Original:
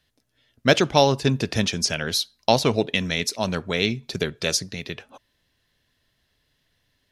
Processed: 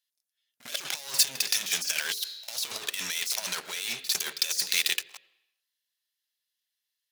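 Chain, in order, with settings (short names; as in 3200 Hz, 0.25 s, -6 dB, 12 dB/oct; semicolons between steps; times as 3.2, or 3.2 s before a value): sample leveller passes 5; low shelf 430 Hz -10.5 dB; on a send at -23 dB: reverb RT60 0.90 s, pre-delay 76 ms; on the sum: negative-ratio compressor -17 dBFS, ratio -0.5; differentiator; de-hum 50.77 Hz, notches 11; pre-echo 51 ms -14.5 dB; gain -3 dB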